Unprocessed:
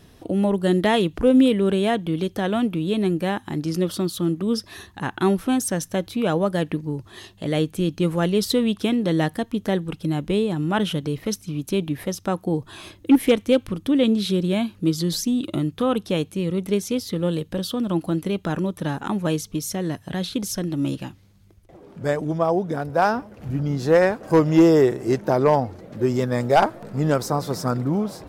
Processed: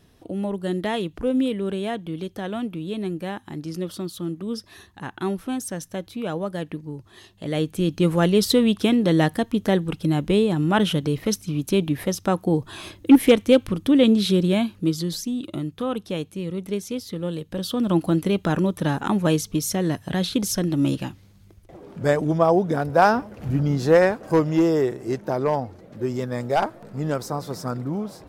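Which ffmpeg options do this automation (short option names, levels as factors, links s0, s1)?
-af "volume=3.35,afade=t=in:st=7.28:d=0.84:silence=0.354813,afade=t=out:st=14.42:d=0.77:silence=0.421697,afade=t=in:st=17.46:d=0.46:silence=0.398107,afade=t=out:st=23.55:d=1.07:silence=0.398107"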